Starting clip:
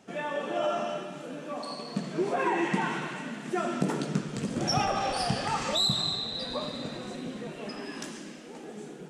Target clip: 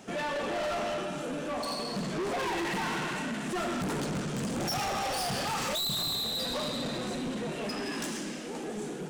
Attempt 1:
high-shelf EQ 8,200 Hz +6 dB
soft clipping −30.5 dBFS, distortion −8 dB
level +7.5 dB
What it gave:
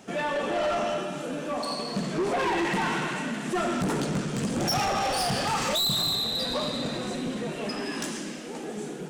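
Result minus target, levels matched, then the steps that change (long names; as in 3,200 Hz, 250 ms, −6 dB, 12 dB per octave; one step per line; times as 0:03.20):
soft clipping: distortion −4 dB
change: soft clipping −37.5 dBFS, distortion −4 dB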